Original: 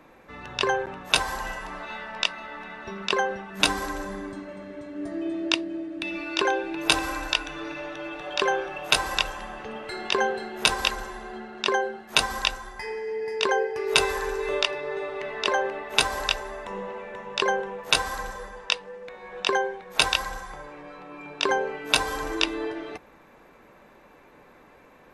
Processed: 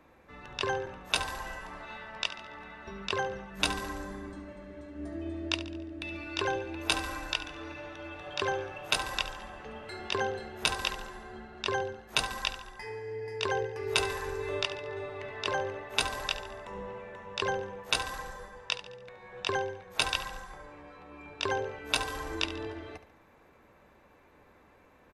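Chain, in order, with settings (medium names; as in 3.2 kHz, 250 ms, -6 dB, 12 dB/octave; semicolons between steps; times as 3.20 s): octave divider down 2 oct, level -3 dB; on a send: feedback delay 71 ms, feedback 47%, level -13.5 dB; on the sum: trim -7.5 dB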